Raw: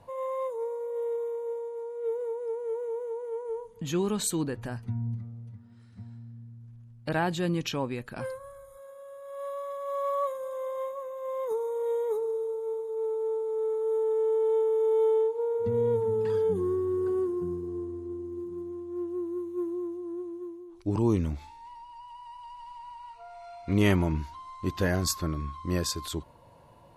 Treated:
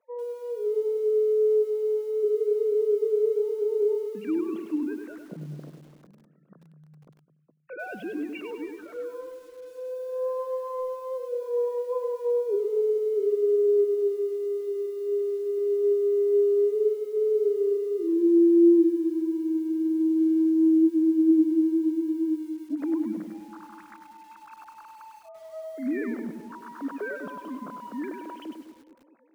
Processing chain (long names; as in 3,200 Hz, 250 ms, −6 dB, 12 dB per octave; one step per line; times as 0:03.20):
three sine waves on the formant tracks
high-pass filter 200 Hz 24 dB per octave
treble cut that deepens with the level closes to 360 Hz, closed at −26 dBFS
parametric band 920 Hz −13.5 dB 0.49 octaves
automatic gain control gain up to 7.5 dB
high-frequency loss of the air 150 metres
on a send: feedback echo with a low-pass in the loop 192 ms, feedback 58%, low-pass 1,300 Hz, level −12 dB
on the sum: wrong playback speed 48 kHz file played as 44.1 kHz
feedback echo at a low word length 100 ms, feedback 35%, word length 9 bits, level −5.5 dB